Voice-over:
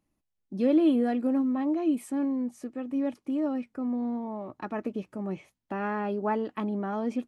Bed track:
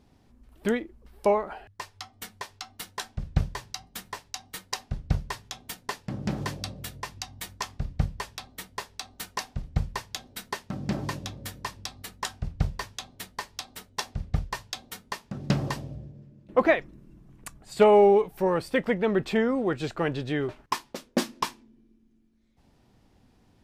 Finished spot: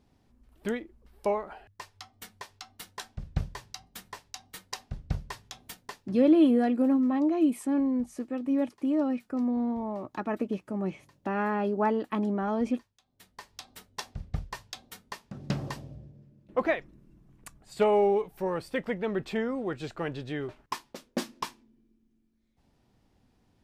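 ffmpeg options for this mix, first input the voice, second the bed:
-filter_complex "[0:a]adelay=5550,volume=2dB[a];[1:a]volume=17.5dB,afade=t=out:st=5.69:d=0.61:silence=0.0668344,afade=t=in:st=13.05:d=0.66:silence=0.0707946[b];[a][b]amix=inputs=2:normalize=0"

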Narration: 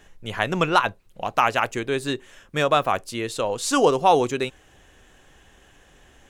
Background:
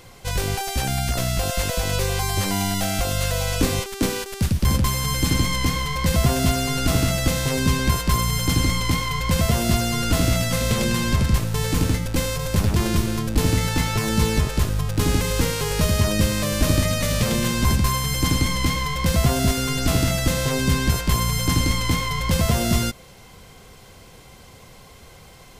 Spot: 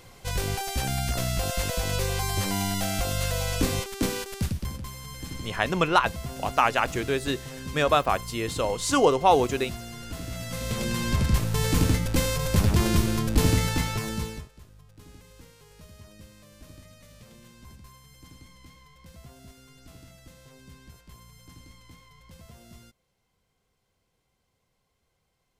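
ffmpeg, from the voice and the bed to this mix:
-filter_complex "[0:a]adelay=5200,volume=-2dB[a];[1:a]volume=11dB,afade=t=out:st=4.34:d=0.38:silence=0.237137,afade=t=in:st=10.27:d=1.41:silence=0.16788,afade=t=out:st=13.47:d=1.02:silence=0.0398107[b];[a][b]amix=inputs=2:normalize=0"

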